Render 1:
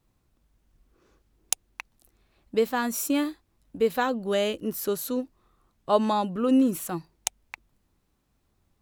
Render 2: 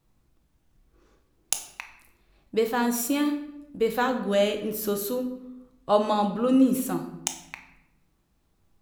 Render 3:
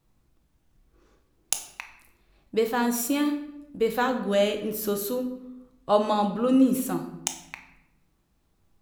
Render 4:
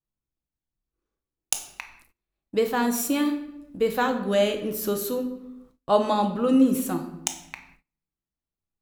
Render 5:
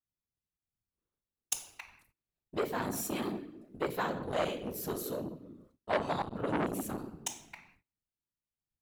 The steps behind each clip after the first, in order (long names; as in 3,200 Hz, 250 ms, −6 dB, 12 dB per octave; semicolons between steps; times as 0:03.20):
rectangular room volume 290 cubic metres, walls mixed, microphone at 0.64 metres
no processing that can be heard
noise gate −55 dBFS, range −25 dB; level +1 dB
random phases in short frames; saturating transformer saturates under 1,500 Hz; level −8.5 dB